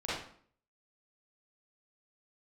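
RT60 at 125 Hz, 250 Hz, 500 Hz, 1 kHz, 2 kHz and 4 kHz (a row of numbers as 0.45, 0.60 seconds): 0.60, 0.60, 0.55, 0.55, 0.50, 0.45 seconds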